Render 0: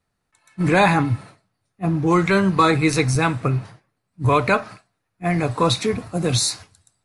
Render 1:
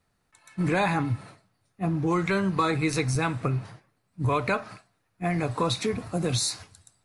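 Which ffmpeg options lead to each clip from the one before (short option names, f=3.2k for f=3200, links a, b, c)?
-af "acompressor=threshold=-33dB:ratio=2,volume=2.5dB"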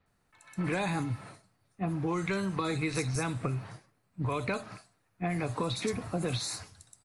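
-filter_complex "[0:a]acrossover=split=4200[a][b];[b]adelay=60[c];[a][c]amix=inputs=2:normalize=0,acrossover=split=560|2900[d][e][f];[d]acompressor=threshold=-31dB:ratio=4[g];[e]acompressor=threshold=-37dB:ratio=4[h];[f]acompressor=threshold=-37dB:ratio=4[i];[g][h][i]amix=inputs=3:normalize=0"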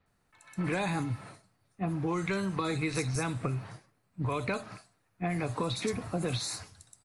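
-af anull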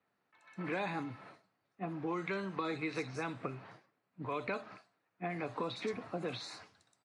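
-af "highpass=240,lowpass=3.6k,volume=-4dB"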